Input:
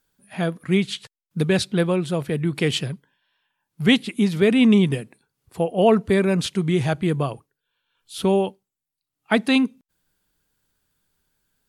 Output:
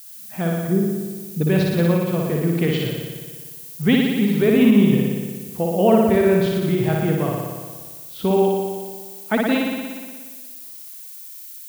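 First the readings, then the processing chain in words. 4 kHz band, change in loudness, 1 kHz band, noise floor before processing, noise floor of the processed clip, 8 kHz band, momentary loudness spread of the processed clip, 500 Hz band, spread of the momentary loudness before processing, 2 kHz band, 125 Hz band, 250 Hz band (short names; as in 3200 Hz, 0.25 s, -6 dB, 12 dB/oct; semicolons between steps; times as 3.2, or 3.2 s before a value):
-3.5 dB, +1.5 dB, +2.0 dB, -85 dBFS, -38 dBFS, +1.5 dB, 19 LU, +3.0 dB, 12 LU, -1.0 dB, +3.0 dB, +2.5 dB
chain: spectral delete 0.68–1.41, 680–8000 Hz; tape spacing loss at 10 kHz 21 dB; added noise violet -42 dBFS; flutter echo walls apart 10.1 m, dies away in 1.5 s; ending taper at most 110 dB/s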